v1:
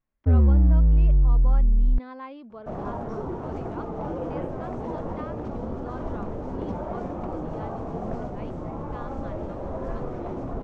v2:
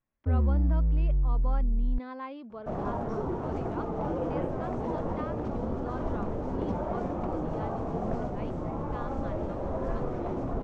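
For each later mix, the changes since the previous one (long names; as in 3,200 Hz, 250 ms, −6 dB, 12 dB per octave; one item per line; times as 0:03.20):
first sound −7.5 dB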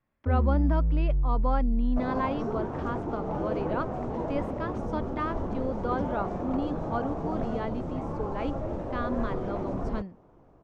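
speech +9.0 dB
second sound: entry −0.70 s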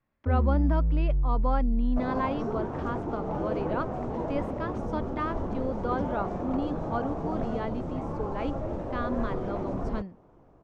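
nothing changed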